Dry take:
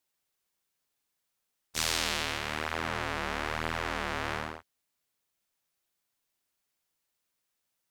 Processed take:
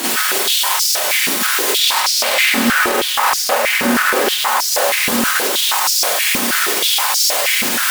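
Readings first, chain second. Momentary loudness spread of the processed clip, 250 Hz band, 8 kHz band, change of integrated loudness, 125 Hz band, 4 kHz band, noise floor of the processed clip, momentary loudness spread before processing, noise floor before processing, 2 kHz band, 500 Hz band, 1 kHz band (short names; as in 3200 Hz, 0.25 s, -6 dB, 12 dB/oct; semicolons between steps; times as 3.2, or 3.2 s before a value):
2 LU, +21.5 dB, +26.0 dB, +19.0 dB, +5.0 dB, +23.0 dB, -19 dBFS, 8 LU, -82 dBFS, +20.5 dB, +20.5 dB, +19.5 dB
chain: zero-crossing step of -26 dBFS; high shelf 5500 Hz -10.5 dB; notch 6400 Hz; requantised 6-bit, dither triangular; on a send: split-band echo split 1700 Hz, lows 0.649 s, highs 0.202 s, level -5.5 dB; on the sum: one-sided clip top -35 dBFS; Schroeder reverb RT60 0.35 s, combs from 30 ms, DRR -8 dB; maximiser +19 dB; stepped high-pass 6.3 Hz 250–5200 Hz; gain -7 dB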